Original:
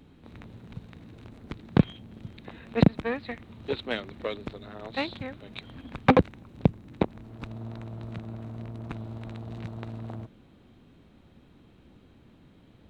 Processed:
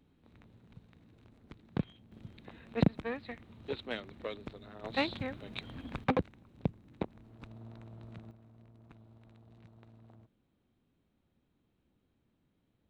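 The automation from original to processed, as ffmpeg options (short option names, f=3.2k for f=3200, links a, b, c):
-af "asetnsamples=n=441:p=0,asendcmd='2.12 volume volume -7.5dB;4.84 volume volume -1dB;6.04 volume volume -11dB;8.31 volume volume -20dB',volume=-13.5dB"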